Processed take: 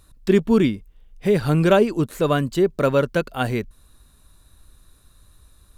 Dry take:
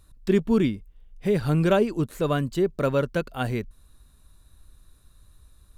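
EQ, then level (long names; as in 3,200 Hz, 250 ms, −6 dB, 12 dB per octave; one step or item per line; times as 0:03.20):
low-shelf EQ 150 Hz −5 dB
+5.5 dB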